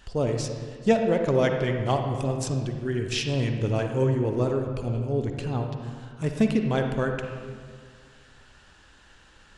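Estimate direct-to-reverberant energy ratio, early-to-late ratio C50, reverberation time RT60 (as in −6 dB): 4.0 dB, 4.5 dB, 1.9 s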